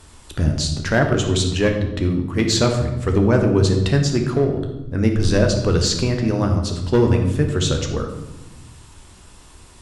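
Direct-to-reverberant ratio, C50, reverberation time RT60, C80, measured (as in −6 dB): 3.0 dB, 6.5 dB, 1.0 s, 8.5 dB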